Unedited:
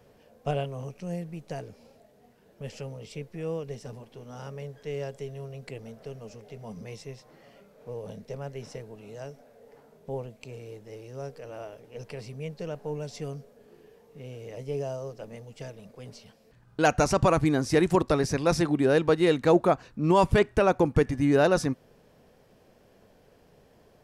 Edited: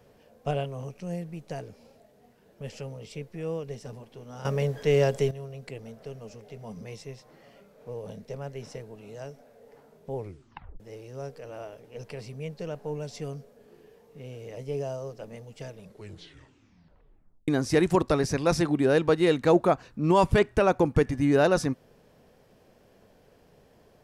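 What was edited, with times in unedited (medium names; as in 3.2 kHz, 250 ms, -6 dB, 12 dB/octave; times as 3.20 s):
4.45–5.31 s: gain +12 dB
10.15 s: tape stop 0.65 s
15.75 s: tape stop 1.73 s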